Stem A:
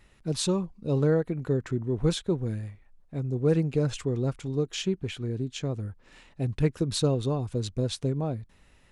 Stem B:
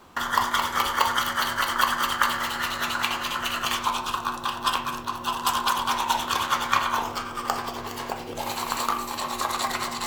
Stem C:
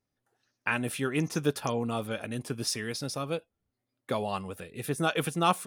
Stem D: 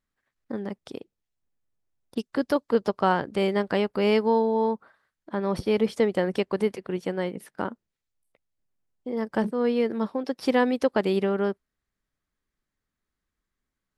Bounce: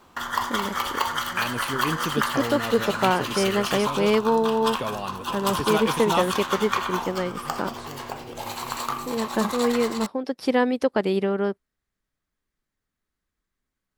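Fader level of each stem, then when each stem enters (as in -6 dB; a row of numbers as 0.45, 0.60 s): -19.0, -3.0, 0.0, +1.0 dB; 0.85, 0.00, 0.70, 0.00 s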